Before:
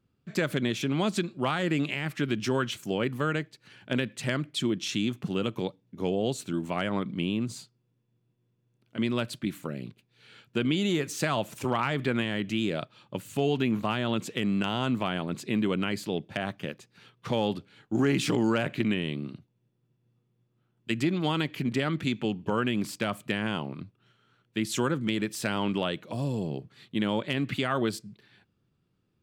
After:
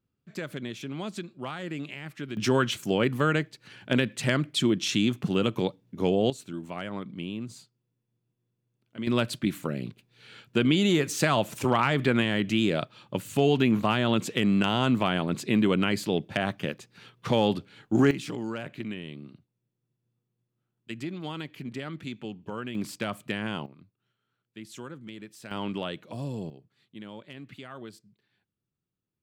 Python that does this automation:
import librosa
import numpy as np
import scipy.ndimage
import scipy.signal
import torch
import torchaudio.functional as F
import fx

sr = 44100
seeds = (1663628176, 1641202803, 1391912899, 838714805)

y = fx.gain(x, sr, db=fx.steps((0.0, -8.0), (2.37, 4.0), (6.3, -6.0), (9.07, 4.0), (18.11, -8.5), (22.75, -2.0), (23.66, -14.0), (25.51, -4.0), (26.5, -15.0)))